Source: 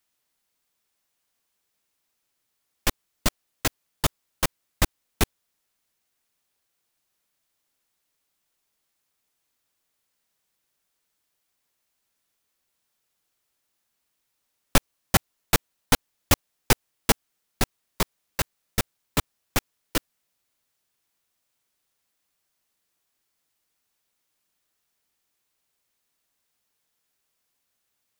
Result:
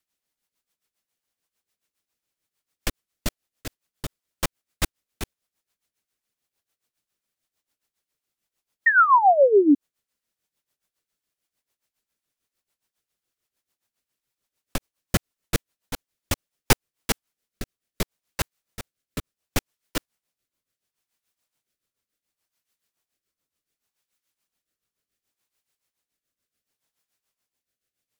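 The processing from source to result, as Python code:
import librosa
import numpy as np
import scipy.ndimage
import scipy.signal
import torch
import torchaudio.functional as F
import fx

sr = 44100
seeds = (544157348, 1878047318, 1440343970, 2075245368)

y = fx.rotary_switch(x, sr, hz=8.0, then_hz=0.7, switch_at_s=16.19)
y = fx.spec_paint(y, sr, seeds[0], shape='fall', start_s=8.86, length_s=0.89, low_hz=270.0, high_hz=1900.0, level_db=-14.0)
y = y * (1.0 - 0.76 / 2.0 + 0.76 / 2.0 * np.cos(2.0 * np.pi * 7.0 * (np.arange(len(y)) / sr)))
y = y * librosa.db_to_amplitude(1.5)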